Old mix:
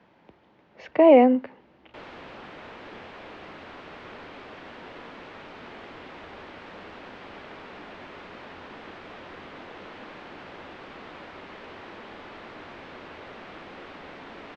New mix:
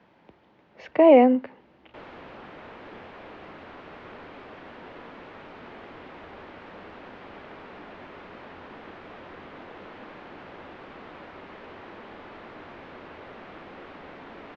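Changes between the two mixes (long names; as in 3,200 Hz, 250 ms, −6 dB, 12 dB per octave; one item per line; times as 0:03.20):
speech: add high-shelf EQ 3,100 Hz +8.5 dB
master: add high-shelf EQ 3,500 Hz −10 dB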